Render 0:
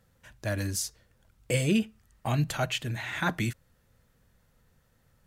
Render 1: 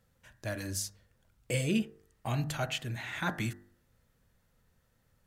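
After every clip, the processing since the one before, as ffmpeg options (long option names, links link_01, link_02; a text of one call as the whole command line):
ffmpeg -i in.wav -af "bandreject=frequency=49.87:width_type=h:width=4,bandreject=frequency=99.74:width_type=h:width=4,bandreject=frequency=149.61:width_type=h:width=4,bandreject=frequency=199.48:width_type=h:width=4,bandreject=frequency=249.35:width_type=h:width=4,bandreject=frequency=299.22:width_type=h:width=4,bandreject=frequency=349.09:width_type=h:width=4,bandreject=frequency=398.96:width_type=h:width=4,bandreject=frequency=448.83:width_type=h:width=4,bandreject=frequency=498.7:width_type=h:width=4,bandreject=frequency=548.57:width_type=h:width=4,bandreject=frequency=598.44:width_type=h:width=4,bandreject=frequency=648.31:width_type=h:width=4,bandreject=frequency=698.18:width_type=h:width=4,bandreject=frequency=748.05:width_type=h:width=4,bandreject=frequency=797.92:width_type=h:width=4,bandreject=frequency=847.79:width_type=h:width=4,bandreject=frequency=897.66:width_type=h:width=4,bandreject=frequency=947.53:width_type=h:width=4,bandreject=frequency=997.4:width_type=h:width=4,bandreject=frequency=1047.27:width_type=h:width=4,bandreject=frequency=1097.14:width_type=h:width=4,bandreject=frequency=1147.01:width_type=h:width=4,bandreject=frequency=1196.88:width_type=h:width=4,bandreject=frequency=1246.75:width_type=h:width=4,bandreject=frequency=1296.62:width_type=h:width=4,bandreject=frequency=1346.49:width_type=h:width=4,bandreject=frequency=1396.36:width_type=h:width=4,bandreject=frequency=1446.23:width_type=h:width=4,bandreject=frequency=1496.1:width_type=h:width=4,bandreject=frequency=1545.97:width_type=h:width=4,bandreject=frequency=1595.84:width_type=h:width=4,bandreject=frequency=1645.71:width_type=h:width=4,bandreject=frequency=1695.58:width_type=h:width=4,bandreject=frequency=1745.45:width_type=h:width=4,bandreject=frequency=1795.32:width_type=h:width=4,bandreject=frequency=1845.19:width_type=h:width=4,bandreject=frequency=1895.06:width_type=h:width=4,bandreject=frequency=1944.93:width_type=h:width=4,bandreject=frequency=1994.8:width_type=h:width=4,volume=-4dB" out.wav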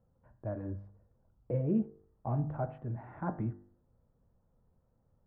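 ffmpeg -i in.wav -af "lowpass=frequency=1000:width=0.5412,lowpass=frequency=1000:width=1.3066" out.wav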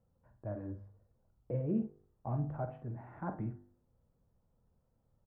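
ffmpeg -i in.wav -filter_complex "[0:a]asplit=2[link_01][link_02];[link_02]adelay=48,volume=-10dB[link_03];[link_01][link_03]amix=inputs=2:normalize=0,volume=-3.5dB" out.wav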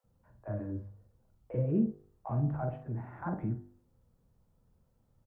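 ffmpeg -i in.wav -filter_complex "[0:a]acrossover=split=620[link_01][link_02];[link_01]adelay=40[link_03];[link_03][link_02]amix=inputs=2:normalize=0,volume=5dB" out.wav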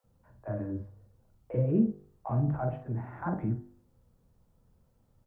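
ffmpeg -i in.wav -af "bandreject=frequency=50:width_type=h:width=6,bandreject=frequency=100:width_type=h:width=6,bandreject=frequency=150:width_type=h:width=6,bandreject=frequency=200:width_type=h:width=6,volume=3.5dB" out.wav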